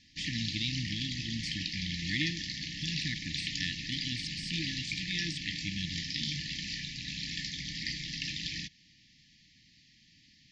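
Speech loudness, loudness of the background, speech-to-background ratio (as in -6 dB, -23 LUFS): -38.0 LUFS, -36.0 LUFS, -2.0 dB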